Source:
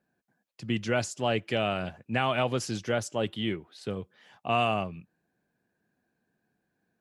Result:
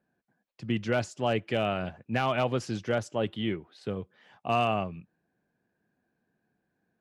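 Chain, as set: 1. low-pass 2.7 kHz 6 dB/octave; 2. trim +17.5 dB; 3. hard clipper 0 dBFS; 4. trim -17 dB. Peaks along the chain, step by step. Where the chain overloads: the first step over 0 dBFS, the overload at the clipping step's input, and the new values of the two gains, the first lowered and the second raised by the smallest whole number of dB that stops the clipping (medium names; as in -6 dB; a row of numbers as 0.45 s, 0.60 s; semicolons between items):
-14.0 dBFS, +3.5 dBFS, 0.0 dBFS, -17.0 dBFS; step 2, 3.5 dB; step 2 +13.5 dB, step 4 -13 dB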